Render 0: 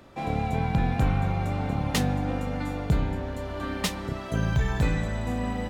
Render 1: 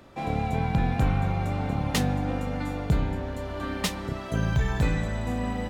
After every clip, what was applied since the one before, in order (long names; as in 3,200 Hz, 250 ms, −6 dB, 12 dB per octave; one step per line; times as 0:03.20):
no processing that can be heard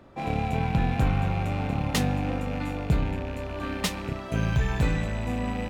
loose part that buzzes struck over −35 dBFS, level −30 dBFS
one half of a high-frequency compander decoder only